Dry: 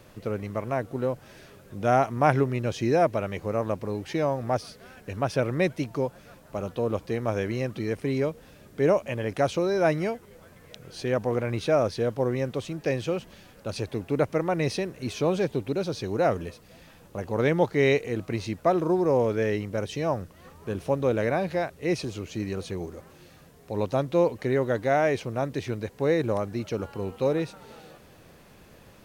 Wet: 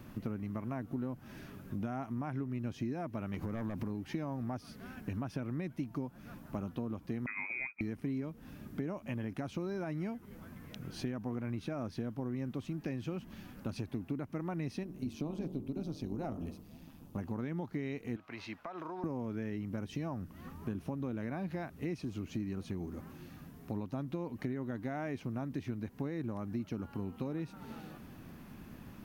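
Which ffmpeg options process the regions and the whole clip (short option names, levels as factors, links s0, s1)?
-filter_complex "[0:a]asettb=1/sr,asplit=3[s0][s1][s2];[s0]atrim=end=3.344[s3];[s1]atrim=start=3.34:end=3.9,asetpts=PTS-STARTPTS,afade=t=in:d=0.004:c=qsin,afade=t=out:st=0.556:d=0.004:c=qsin,aeval=exprs='0.2*sin(PI/2*1.78*val(0)/0.2)':c=same,acompressor=threshold=0.0355:ratio=3:attack=3.2:release=140:knee=1:detection=peak[s4];[s2]atrim=start=3.896[s5];[s3][s4]acrossfade=d=0.004:c1=hsin:c2=qsin[s6];[s6][s5]acrossfade=d=0.004:c1=qsin:c2=hsin,asettb=1/sr,asplit=3[s7][s8][s9];[s7]atrim=end=7.264[s10];[s8]atrim=start=7.26:end=7.81,asetpts=PTS-STARTPTS,afade=t=in:d=0.004:c=qsin,afade=t=out:st=0.546:d=0.004:c=qsin,lowpass=f=2200:t=q:w=0.5098,lowpass=f=2200:t=q:w=0.6013,lowpass=f=2200:t=q:w=0.9,lowpass=f=2200:t=q:w=2.563,afreqshift=-2600,agate=range=0.0224:threshold=0.0398:ratio=3:release=100:detection=peak[s11];[s9]atrim=start=7.806[s12];[s10][s11]acrossfade=d=0.004:c1=hsin:c2=qsin[s13];[s13][s12]acrossfade=d=0.004:c1=qsin:c2=hsin,asettb=1/sr,asplit=3[s14][s15][s16];[s14]atrim=end=14.834[s17];[s15]atrim=start=14.83:end=17.16,asetpts=PTS-STARTPTS,afade=t=in:d=0.004:c=qsin,afade=t=out:st=2.326:d=0.004:c=qsin,bandreject=f=45.82:t=h:w=4,bandreject=f=91.64:t=h:w=4,bandreject=f=137.46:t=h:w=4,bandreject=f=183.28:t=h:w=4,bandreject=f=229.1:t=h:w=4,bandreject=f=274.92:t=h:w=4,bandreject=f=320.74:t=h:w=4,bandreject=f=366.56:t=h:w=4,bandreject=f=412.38:t=h:w=4,bandreject=f=458.2:t=h:w=4,bandreject=f=504.02:t=h:w=4,bandreject=f=549.84:t=h:w=4,bandreject=f=595.66:t=h:w=4,bandreject=f=641.48:t=h:w=4,bandreject=f=687.3:t=h:w=4,bandreject=f=733.12:t=h:w=4,bandreject=f=778.94:t=h:w=4,bandreject=f=824.76:t=h:w=4,bandreject=f=870.58:t=h:w=4,bandreject=f=916.4:t=h:w=4,bandreject=f=962.22:t=h:w=4,bandreject=f=1008.04:t=h:w=4,bandreject=f=1053.86:t=h:w=4,bandreject=f=1099.68:t=h:w=4,bandreject=f=1145.5:t=h:w=4,bandreject=f=1191.32:t=h:w=4,bandreject=f=1237.14:t=h:w=4,bandreject=f=1282.96:t=h:w=4,bandreject=f=1328.78:t=h:w=4,bandreject=f=1374.6:t=h:w=4,tremolo=f=150:d=0.621,equalizer=f=1700:w=1.3:g=-9.5[s18];[s16]atrim=start=17.156[s19];[s17][s18]acrossfade=d=0.004:c1=hsin:c2=qsin[s20];[s20][s19]acrossfade=d=0.004:c1=qsin:c2=hsin,asettb=1/sr,asplit=3[s21][s22][s23];[s21]atrim=end=18.164[s24];[s22]atrim=start=18.16:end=19.04,asetpts=PTS-STARTPTS,afade=t=in:d=0.004:c=qsin,afade=t=out:st=0.876:d=0.004:c=qsin,acrossover=split=570 4700:gain=0.0794 1 0.178[s25][s26][s27];[s25][s26][s27]amix=inputs=3:normalize=0,acompressor=threshold=0.0178:ratio=16:attack=3.2:release=140:knee=1:detection=peak[s28];[s23]atrim=start=19.036[s29];[s24][s28]acrossfade=d=0.004:c1=hsin:c2=qsin[s30];[s30][s29]acrossfade=d=0.004:c1=qsin:c2=hsin,alimiter=limit=0.141:level=0:latency=1:release=260,equalizer=f=250:t=o:w=1:g=9,equalizer=f=500:t=o:w=1:g=-12,equalizer=f=2000:t=o:w=1:g=-3,equalizer=f=4000:t=o:w=1:g=-6,equalizer=f=8000:t=o:w=1:g=-9,acompressor=threshold=0.0141:ratio=5,volume=1.19"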